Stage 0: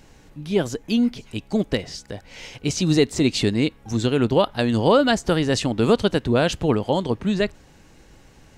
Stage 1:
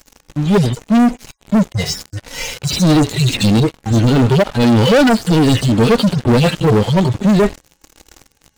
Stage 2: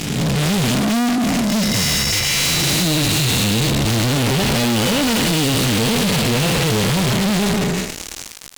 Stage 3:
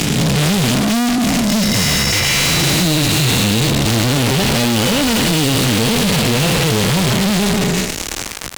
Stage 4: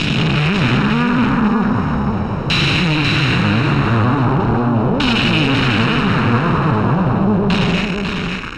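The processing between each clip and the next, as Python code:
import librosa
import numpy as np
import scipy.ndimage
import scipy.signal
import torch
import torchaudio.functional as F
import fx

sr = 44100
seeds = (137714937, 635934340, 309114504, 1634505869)

y1 = fx.hpss_only(x, sr, part='harmonic')
y1 = fx.peak_eq(y1, sr, hz=6600.0, db=9.5, octaves=1.2)
y1 = fx.leveller(y1, sr, passes=5)
y2 = fx.spec_blur(y1, sr, span_ms=528.0)
y2 = fx.band_shelf(y2, sr, hz=4600.0, db=10.0, octaves=2.8)
y2 = fx.fuzz(y2, sr, gain_db=35.0, gate_db=-44.0)
y2 = F.gain(torch.from_numpy(y2), -3.0).numpy()
y3 = fx.band_squash(y2, sr, depth_pct=70)
y3 = F.gain(torch.from_numpy(y3), 2.0).numpy()
y4 = fx.lower_of_two(y3, sr, delay_ms=0.74)
y4 = fx.filter_lfo_lowpass(y4, sr, shape='saw_down', hz=0.4, low_hz=610.0, high_hz=3300.0, q=1.9)
y4 = y4 + 10.0 ** (-5.0 / 20.0) * np.pad(y4, (int(546 * sr / 1000.0), 0))[:len(y4)]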